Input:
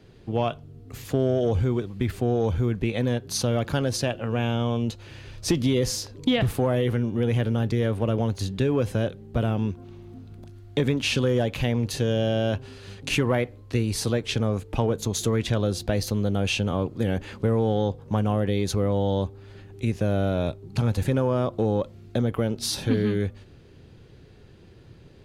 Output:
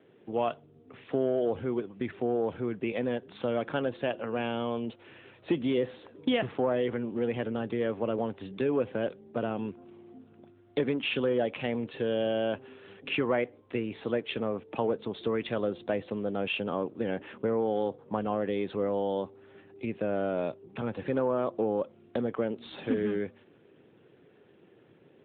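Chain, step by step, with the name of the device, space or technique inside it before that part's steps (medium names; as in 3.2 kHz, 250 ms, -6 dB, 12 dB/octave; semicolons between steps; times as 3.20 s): telephone (band-pass 270–3200 Hz; trim -2 dB; AMR-NB 12.2 kbps 8 kHz)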